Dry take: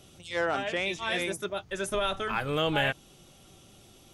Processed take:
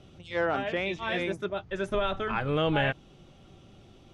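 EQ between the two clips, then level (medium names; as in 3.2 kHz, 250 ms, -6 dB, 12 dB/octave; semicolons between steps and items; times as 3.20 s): Bessel low-pass 2.9 kHz, order 2; bass shelf 370 Hz +4.5 dB; 0.0 dB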